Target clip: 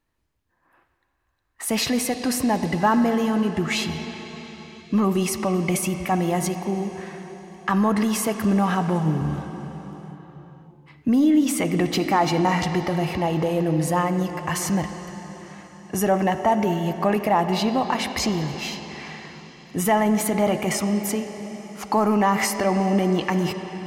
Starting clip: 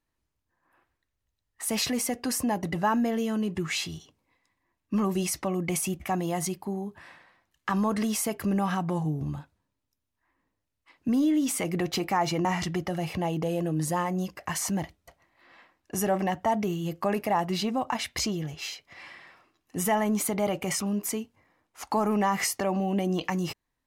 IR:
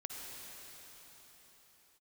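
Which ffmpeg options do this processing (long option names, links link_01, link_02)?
-filter_complex "[0:a]asplit=2[link_01][link_02];[1:a]atrim=start_sample=2205,lowpass=4500[link_03];[link_02][link_03]afir=irnorm=-1:irlink=0,volume=-2dB[link_04];[link_01][link_04]amix=inputs=2:normalize=0,acontrast=51,volume=-3dB"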